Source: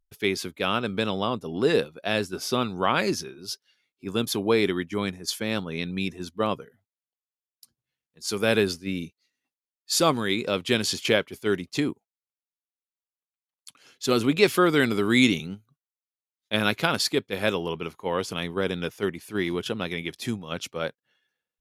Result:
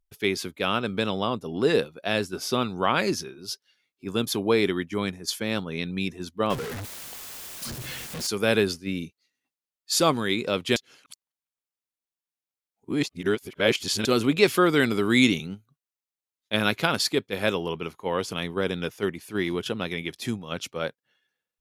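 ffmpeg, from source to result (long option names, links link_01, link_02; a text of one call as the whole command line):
ffmpeg -i in.wav -filter_complex "[0:a]asettb=1/sr,asplit=3[link_01][link_02][link_03];[link_01]atrim=end=6.504[link_04];[link_02]atrim=start=6.5:end=8.27,asetpts=PTS-STARTPTS,afade=type=in:duration=0.004:curve=qsin,afade=type=out:start_time=1.766:duration=0.004:curve=qsin,aeval=exprs='val(0)+0.5*0.0398*sgn(val(0))':channel_layout=same[link_05];[link_03]atrim=start=8.266[link_06];[link_04][link_05]acrossfade=duration=0.004:curve1=hsin:curve2=qsin[link_07];[link_07][link_06]acrossfade=duration=0.004:curve1=qsin:curve2=hsin,asplit=3[link_08][link_09][link_10];[link_08]atrim=end=10.762[link_11];[link_09]atrim=start=10.758:end=14.052,asetpts=PTS-STARTPTS,areverse[link_12];[link_10]atrim=start=14.048[link_13];[link_11][link_12]acrossfade=duration=0.004:curve1=hsin:curve2=hsin[link_14];[link_14][link_13]acrossfade=duration=0.004:curve1=hsin:curve2=hsin" out.wav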